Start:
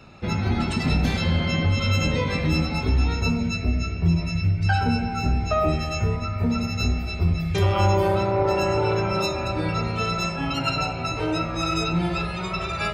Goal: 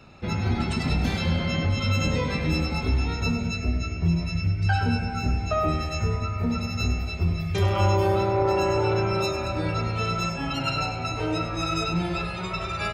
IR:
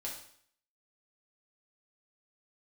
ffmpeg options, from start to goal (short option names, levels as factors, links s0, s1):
-af "aecho=1:1:100|200|300|400|500:0.299|0.14|0.0659|0.031|0.0146,volume=0.75"